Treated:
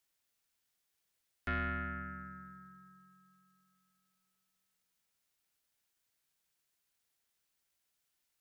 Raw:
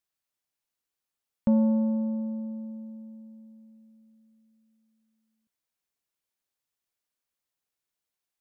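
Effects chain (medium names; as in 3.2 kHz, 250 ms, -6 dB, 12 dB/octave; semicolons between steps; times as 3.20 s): saturation -26 dBFS, distortion -9 dB; steep high-pass 580 Hz 72 dB/octave; ring modulator 740 Hz; trim +8.5 dB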